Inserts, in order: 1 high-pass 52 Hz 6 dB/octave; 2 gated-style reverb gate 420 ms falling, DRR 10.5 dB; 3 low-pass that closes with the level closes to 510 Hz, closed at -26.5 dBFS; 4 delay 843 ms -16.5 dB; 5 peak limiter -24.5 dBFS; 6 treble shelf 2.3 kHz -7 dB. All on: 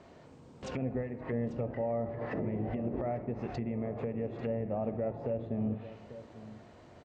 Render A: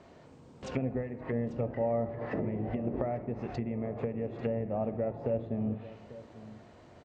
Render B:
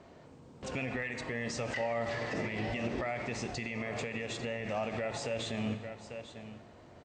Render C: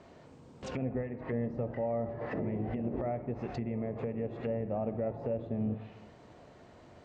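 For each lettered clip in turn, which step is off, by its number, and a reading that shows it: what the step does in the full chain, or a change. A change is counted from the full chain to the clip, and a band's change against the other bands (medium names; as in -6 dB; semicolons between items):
5, crest factor change +5.5 dB; 3, 2 kHz band +15.5 dB; 4, momentary loudness spread change +6 LU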